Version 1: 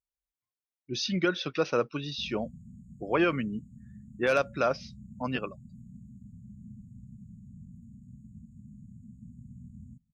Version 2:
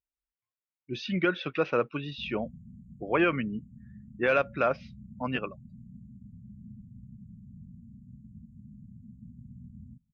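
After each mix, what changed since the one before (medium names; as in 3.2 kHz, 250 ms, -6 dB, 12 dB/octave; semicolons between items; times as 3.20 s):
master: add resonant high shelf 3.8 kHz -13 dB, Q 1.5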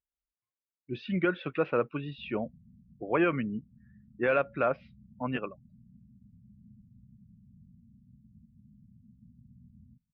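background -8.5 dB; master: add distance through air 350 m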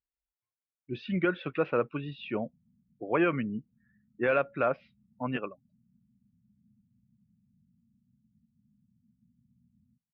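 background: add tilt EQ +4.5 dB/octave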